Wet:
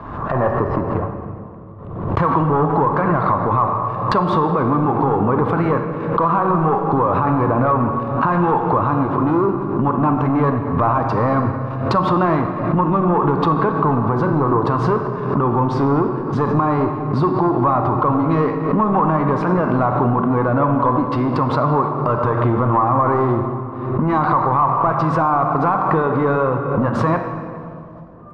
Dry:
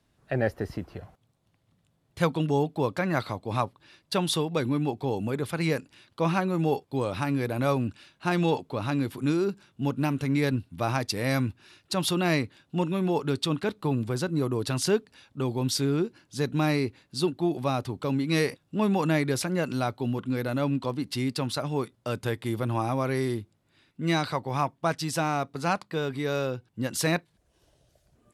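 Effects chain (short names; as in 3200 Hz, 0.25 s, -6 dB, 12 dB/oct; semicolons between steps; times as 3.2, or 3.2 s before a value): de-hum 189 Hz, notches 28; sample leveller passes 3; compressor 12:1, threshold -40 dBFS, peak gain reduction 25 dB; synth low-pass 1100 Hz, resonance Q 6.1; reverb RT60 2.4 s, pre-delay 30 ms, DRR 5.5 dB; maximiser +28.5 dB; backwards sustainer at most 49 dB/s; gain -6.5 dB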